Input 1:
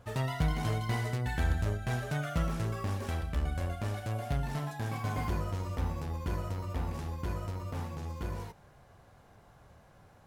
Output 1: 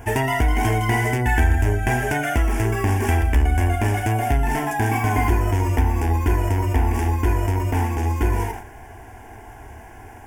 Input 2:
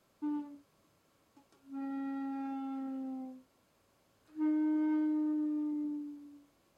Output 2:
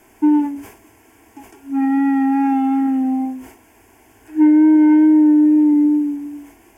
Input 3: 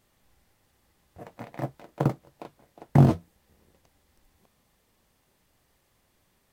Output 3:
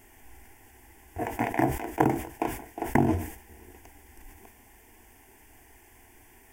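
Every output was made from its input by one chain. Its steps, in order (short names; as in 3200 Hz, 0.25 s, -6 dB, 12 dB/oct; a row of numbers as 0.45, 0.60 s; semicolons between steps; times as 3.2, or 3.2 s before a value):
compressor 4:1, threshold -33 dBFS; wow and flutter 19 cents; fixed phaser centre 820 Hz, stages 8; sustainer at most 97 dB/s; normalise peaks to -6 dBFS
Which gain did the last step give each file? +21.0, +24.5, +16.0 dB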